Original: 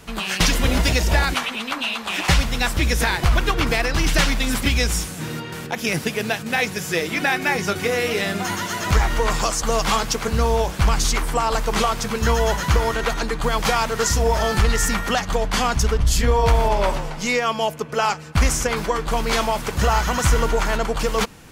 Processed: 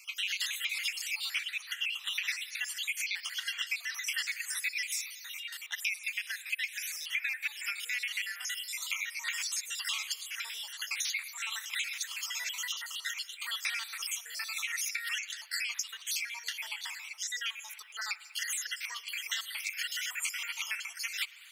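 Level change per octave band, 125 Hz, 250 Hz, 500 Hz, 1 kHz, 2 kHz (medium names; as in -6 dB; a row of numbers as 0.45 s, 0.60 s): under -40 dB, under -40 dB, under -40 dB, -28.0 dB, -10.0 dB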